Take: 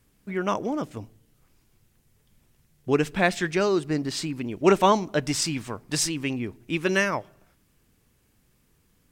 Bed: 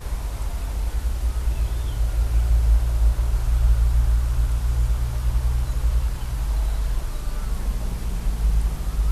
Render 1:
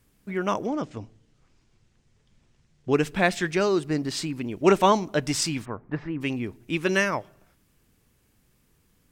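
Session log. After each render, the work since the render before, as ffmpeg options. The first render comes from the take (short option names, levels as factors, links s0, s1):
-filter_complex "[0:a]asettb=1/sr,asplit=3[s0][s1][s2];[s0]atrim=end=0.674[s3];[s1]atrim=start=0.67:end=2.94,asetpts=PTS-STARTPTS,afade=t=in:d=0.004:c=qsin,afade=t=out:st=2.266:d=0.004:c=qsin,lowpass=f=7200:w=0.5412,lowpass=f=7200:w=1.3066[s4];[s2]atrim=start=2.936[s5];[s3][s4]acrossfade=d=0.004:c1=hsin:c2=qsin[s6];[s6][s5]acrossfade=d=0.004:c1=qsin:c2=hsin,asplit=3[s7][s8][s9];[s7]afade=t=out:st=5.64:d=0.02[s10];[s8]lowpass=f=1800:w=0.5412,lowpass=f=1800:w=1.3066,afade=t=in:st=5.64:d=0.02,afade=t=out:st=6.2:d=0.02[s11];[s9]afade=t=in:st=6.2:d=0.02[s12];[s10][s11][s12]amix=inputs=3:normalize=0"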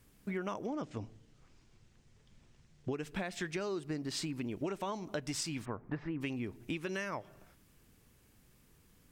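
-af "alimiter=limit=0.158:level=0:latency=1:release=290,acompressor=threshold=0.0178:ratio=6"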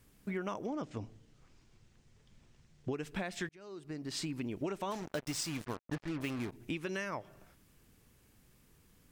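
-filter_complex "[0:a]asplit=3[s0][s1][s2];[s0]afade=t=out:st=4.9:d=0.02[s3];[s1]acrusher=bits=6:mix=0:aa=0.5,afade=t=in:st=4.9:d=0.02,afade=t=out:st=6.51:d=0.02[s4];[s2]afade=t=in:st=6.51:d=0.02[s5];[s3][s4][s5]amix=inputs=3:normalize=0,asplit=2[s6][s7];[s6]atrim=end=3.49,asetpts=PTS-STARTPTS,afade=t=out:st=3.486:d=0.004:c=hsin[s8];[s7]atrim=start=3.49,asetpts=PTS-STARTPTS,afade=t=in:d=0.75[s9];[s8][s9]concat=n=2:v=0:a=1"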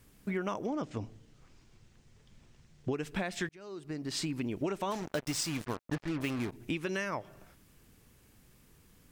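-af "volume=1.5"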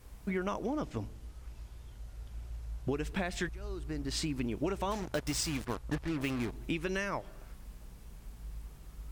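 -filter_complex "[1:a]volume=0.0631[s0];[0:a][s0]amix=inputs=2:normalize=0"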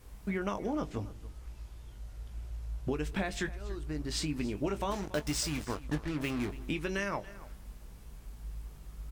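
-filter_complex "[0:a]asplit=2[s0][s1];[s1]adelay=20,volume=0.316[s2];[s0][s2]amix=inputs=2:normalize=0,aecho=1:1:283:0.119"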